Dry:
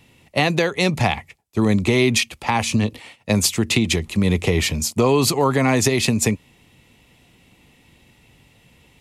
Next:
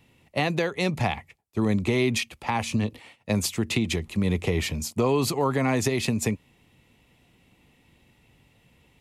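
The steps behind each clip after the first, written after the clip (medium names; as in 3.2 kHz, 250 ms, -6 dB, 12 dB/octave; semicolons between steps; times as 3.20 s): peaking EQ 6.7 kHz -4 dB 2.3 oct; trim -6 dB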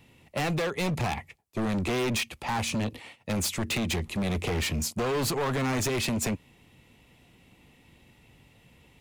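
hard clipper -28 dBFS, distortion -5 dB; trim +2.5 dB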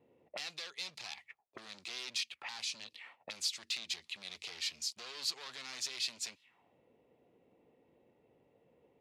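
auto-wah 420–4500 Hz, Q 2.5, up, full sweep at -29.5 dBFS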